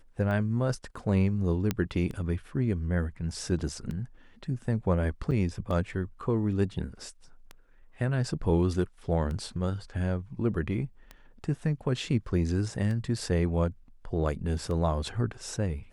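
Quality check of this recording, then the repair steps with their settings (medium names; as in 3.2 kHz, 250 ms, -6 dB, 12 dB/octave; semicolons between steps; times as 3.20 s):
tick 33 1/3 rpm -25 dBFS
1.71 s: pop -13 dBFS
5.31–5.32 s: dropout 7.1 ms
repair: de-click; interpolate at 5.31 s, 7.1 ms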